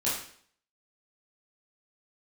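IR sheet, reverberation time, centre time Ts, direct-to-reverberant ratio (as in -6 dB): 0.55 s, 47 ms, -9.0 dB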